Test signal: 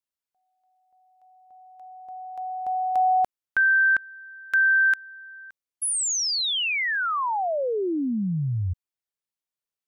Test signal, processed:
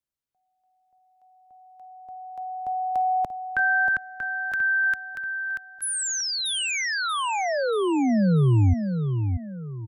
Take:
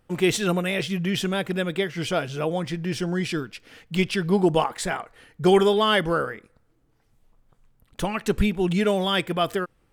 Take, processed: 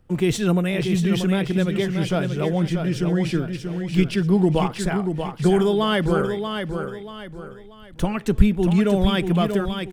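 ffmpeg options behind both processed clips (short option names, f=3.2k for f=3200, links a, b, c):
-filter_complex "[0:a]lowshelf=f=320:g=11.5,acrossover=split=190|5500[a][b][c];[b]acompressor=threshold=-20dB:ratio=2.5:attack=26:release=35:knee=2.83:detection=peak[d];[a][d][c]amix=inputs=3:normalize=0,asplit=2[e][f];[f]aecho=0:1:635|1270|1905|2540:0.473|0.166|0.058|0.0203[g];[e][g]amix=inputs=2:normalize=0,volume=-2.5dB"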